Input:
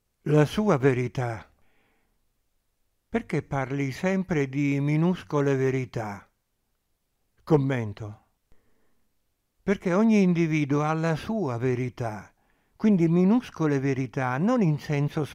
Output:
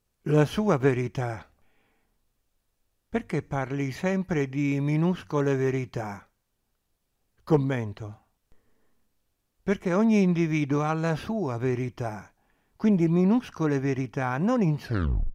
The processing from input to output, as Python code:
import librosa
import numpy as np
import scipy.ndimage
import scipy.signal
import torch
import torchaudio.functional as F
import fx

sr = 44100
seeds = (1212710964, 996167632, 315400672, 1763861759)

y = fx.tape_stop_end(x, sr, length_s=0.54)
y = fx.notch(y, sr, hz=2100.0, q=21.0)
y = F.gain(torch.from_numpy(y), -1.0).numpy()